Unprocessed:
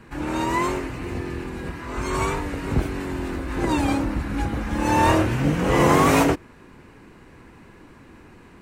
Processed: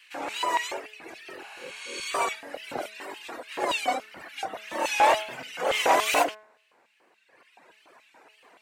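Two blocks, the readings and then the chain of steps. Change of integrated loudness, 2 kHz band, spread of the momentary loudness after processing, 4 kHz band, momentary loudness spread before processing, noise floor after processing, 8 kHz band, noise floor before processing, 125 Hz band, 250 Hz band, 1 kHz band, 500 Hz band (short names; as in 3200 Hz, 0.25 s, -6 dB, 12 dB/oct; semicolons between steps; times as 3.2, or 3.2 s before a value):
-4.5 dB, -2.0 dB, 19 LU, +2.5 dB, 13 LU, -65 dBFS, -1.5 dB, -48 dBFS, under -30 dB, -19.5 dB, -2.5 dB, -5.5 dB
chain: reverb removal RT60 1.9 s; wow and flutter 110 cents; LFO high-pass square 3.5 Hz 650–2800 Hz; bell 1100 Hz -2.5 dB; spectral repair 1.46–2.03, 570–11000 Hz both; de-hum 214.2 Hz, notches 10; core saturation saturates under 1300 Hz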